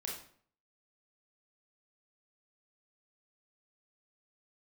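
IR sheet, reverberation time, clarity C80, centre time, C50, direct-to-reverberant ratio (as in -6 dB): 0.55 s, 8.0 dB, 40 ms, 3.5 dB, -2.5 dB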